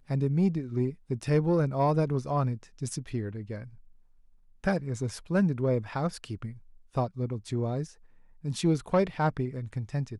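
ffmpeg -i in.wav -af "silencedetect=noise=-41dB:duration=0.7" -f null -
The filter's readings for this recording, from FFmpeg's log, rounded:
silence_start: 3.67
silence_end: 4.64 | silence_duration: 0.96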